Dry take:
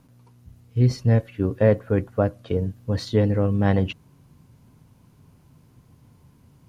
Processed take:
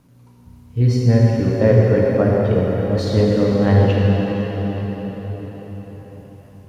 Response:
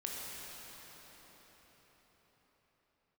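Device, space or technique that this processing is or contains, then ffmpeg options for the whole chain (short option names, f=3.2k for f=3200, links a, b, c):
cathedral: -filter_complex "[1:a]atrim=start_sample=2205[a];[0:a][a]afir=irnorm=-1:irlink=0,volume=4.5dB"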